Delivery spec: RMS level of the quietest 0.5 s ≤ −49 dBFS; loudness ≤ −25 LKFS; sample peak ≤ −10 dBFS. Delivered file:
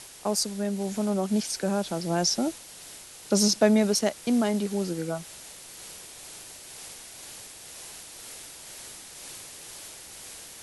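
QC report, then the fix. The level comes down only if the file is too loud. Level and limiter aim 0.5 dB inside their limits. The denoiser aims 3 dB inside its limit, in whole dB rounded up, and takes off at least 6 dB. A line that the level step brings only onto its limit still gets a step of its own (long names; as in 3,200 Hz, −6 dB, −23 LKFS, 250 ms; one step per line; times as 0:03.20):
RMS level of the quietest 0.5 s −45 dBFS: out of spec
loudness −26.0 LKFS: in spec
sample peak −8.5 dBFS: out of spec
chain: broadband denoise 7 dB, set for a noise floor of −45 dBFS
brickwall limiter −10.5 dBFS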